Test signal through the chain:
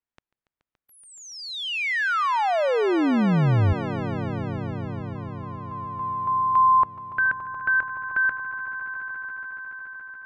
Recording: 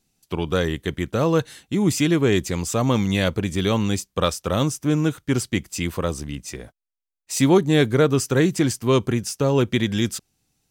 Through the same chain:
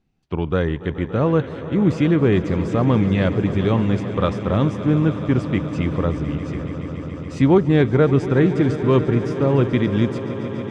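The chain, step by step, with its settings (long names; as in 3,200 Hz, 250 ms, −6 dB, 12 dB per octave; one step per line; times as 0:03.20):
low-pass filter 2,200 Hz 12 dB per octave
low-shelf EQ 220 Hz +5 dB
on a send: echo that builds up and dies away 142 ms, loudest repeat 5, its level −16 dB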